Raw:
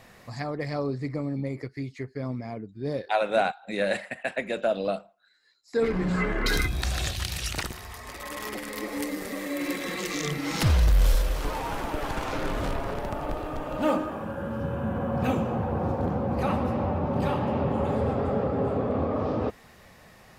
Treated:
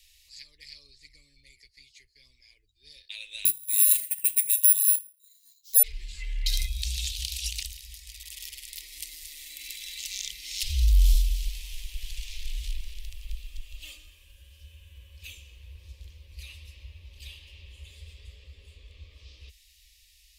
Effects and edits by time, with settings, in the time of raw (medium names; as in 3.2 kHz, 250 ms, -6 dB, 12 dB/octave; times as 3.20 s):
3.45–5.83 s: careless resampling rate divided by 4×, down none, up zero stuff
whole clip: inverse Chebyshev band-stop 110–1500 Hz, stop band 40 dB; trim +1.5 dB